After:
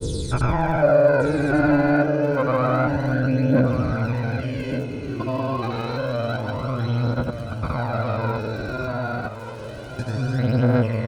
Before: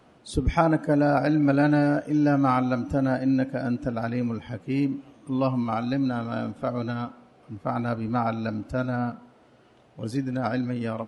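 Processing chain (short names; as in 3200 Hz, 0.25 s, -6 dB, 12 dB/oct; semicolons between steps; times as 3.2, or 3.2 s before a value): stepped spectrum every 0.4 s; high shelf 5100 Hz +10 dB; comb 2 ms, depth 48%; in parallel at +3 dB: upward compressor, threshold -28 dBFS; on the sum: treble ducked by the level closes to 2700 Hz, closed at -15 dBFS; crackle 59/s -34 dBFS; phaser 0.28 Hz, delay 3.1 ms, feedback 65%; grains, pitch spread up and down by 0 st; on a send: echo 1.177 s -10 dB; on the sum: gain -1.5 dB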